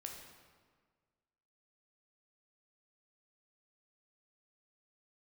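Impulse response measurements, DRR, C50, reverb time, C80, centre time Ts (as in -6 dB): 1.0 dB, 4.0 dB, 1.6 s, 5.5 dB, 50 ms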